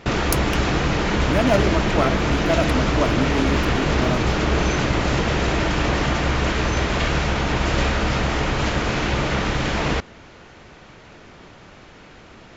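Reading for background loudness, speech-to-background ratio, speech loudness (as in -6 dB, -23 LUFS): -21.0 LUFS, -4.5 dB, -25.5 LUFS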